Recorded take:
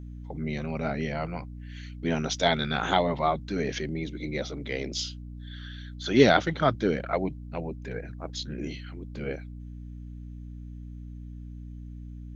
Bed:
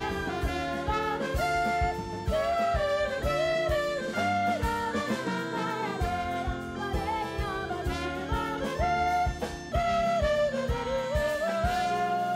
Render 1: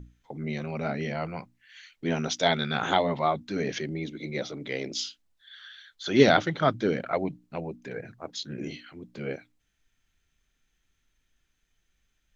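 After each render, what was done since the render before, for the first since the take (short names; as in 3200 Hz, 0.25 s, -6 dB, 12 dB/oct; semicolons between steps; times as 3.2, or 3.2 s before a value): notches 60/120/180/240/300 Hz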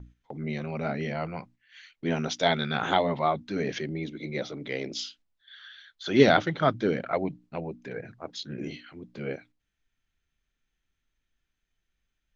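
gate -53 dBFS, range -6 dB; Bessel low-pass 5200 Hz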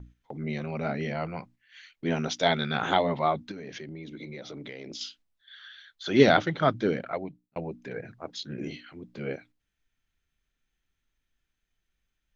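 3.51–5.01 compressor 12:1, threshold -36 dBFS; 6.86–7.56 fade out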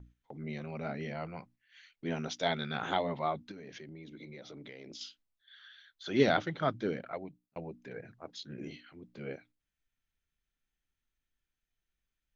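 gain -7.5 dB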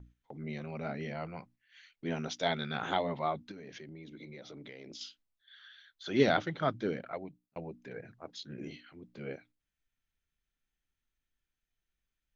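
nothing audible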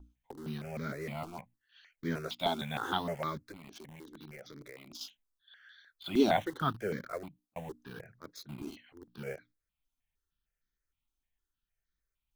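in parallel at -7 dB: bit-crush 7-bit; on the sum: step phaser 6.5 Hz 510–2700 Hz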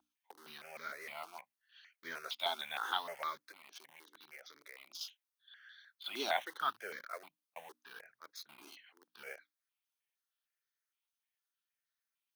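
HPF 970 Hz 12 dB/oct; notch 7400 Hz, Q 5.8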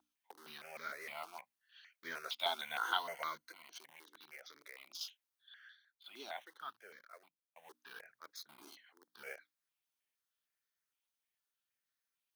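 2.6–3.8 ripple EQ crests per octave 1.9, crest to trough 8 dB; 5.66–7.75 dip -12 dB, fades 0.13 s; 8.36–9.24 bell 2600 Hz -10.5 dB 0.42 oct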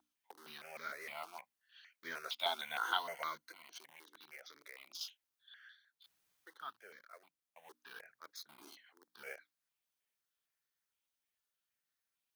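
6.06–6.46 room tone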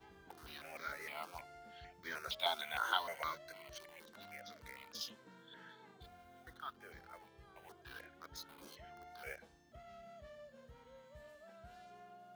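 add bed -29.5 dB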